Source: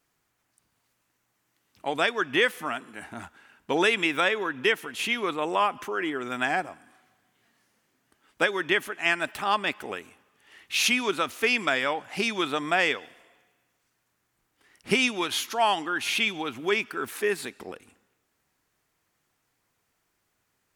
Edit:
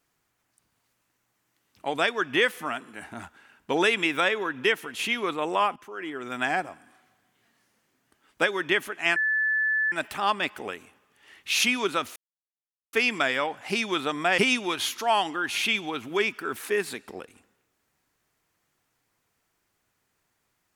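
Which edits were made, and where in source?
5.76–6.48 s: fade in, from -15 dB
9.16 s: add tone 1.74 kHz -21.5 dBFS 0.76 s
11.40 s: insert silence 0.77 s
12.85–14.90 s: delete

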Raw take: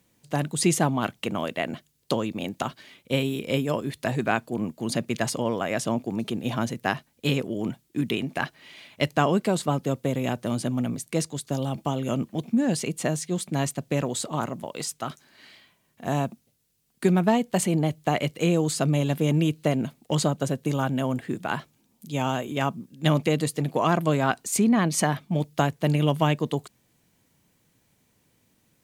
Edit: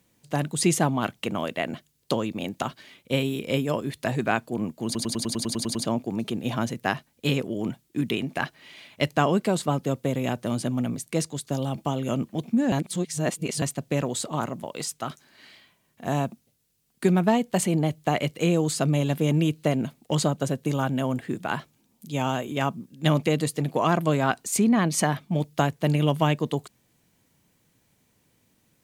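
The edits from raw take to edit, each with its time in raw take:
4.85 s: stutter in place 0.10 s, 10 plays
12.72–13.62 s: reverse

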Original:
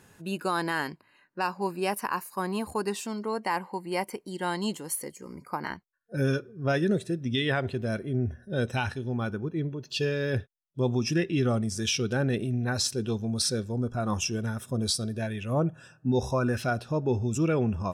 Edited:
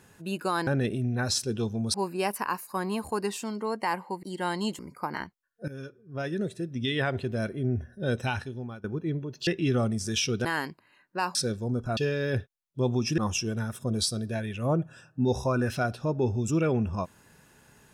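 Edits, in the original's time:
0.67–1.57 s: swap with 12.16–13.43 s
3.86–4.24 s: delete
4.80–5.29 s: delete
6.18–7.67 s: fade in linear, from -18 dB
8.59–9.34 s: fade out equal-power, to -20 dB
9.97–11.18 s: move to 14.05 s

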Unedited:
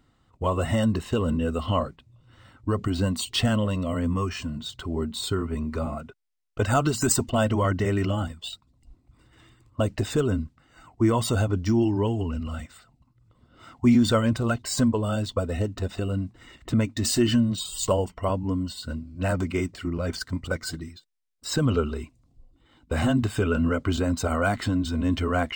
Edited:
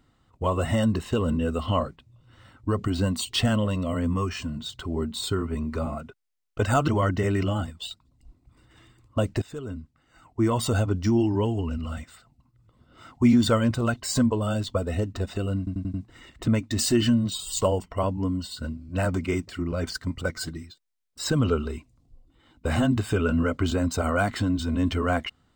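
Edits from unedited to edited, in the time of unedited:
6.88–7.50 s: delete
10.04–11.36 s: fade in, from -17.5 dB
16.20 s: stutter 0.09 s, 5 plays

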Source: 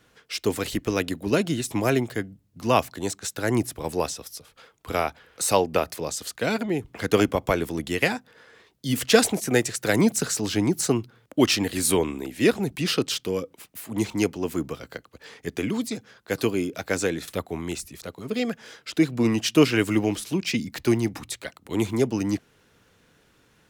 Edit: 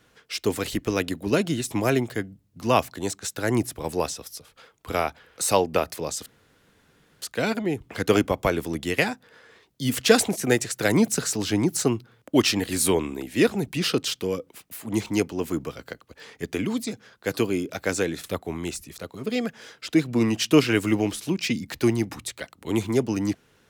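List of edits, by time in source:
6.26 s: insert room tone 0.96 s

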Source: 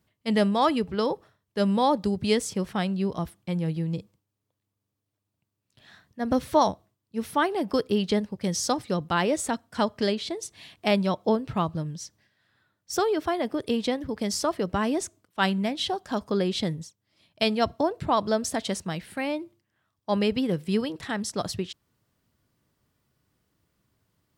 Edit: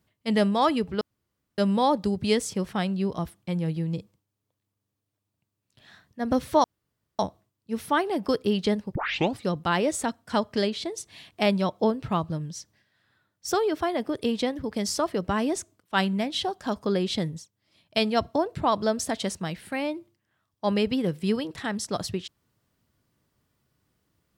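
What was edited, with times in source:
1.01–1.58 s: room tone
6.64 s: insert room tone 0.55 s
8.40 s: tape start 0.43 s

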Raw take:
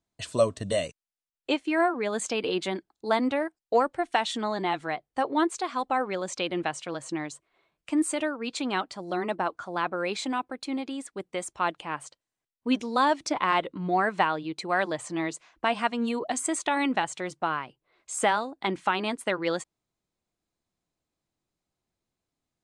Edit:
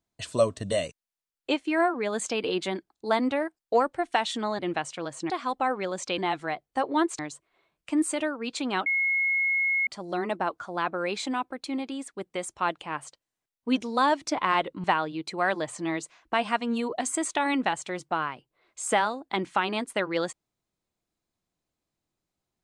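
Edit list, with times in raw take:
4.59–5.60 s: swap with 6.48–7.19 s
8.86 s: add tone 2.17 kHz -22 dBFS 1.01 s
13.83–14.15 s: delete

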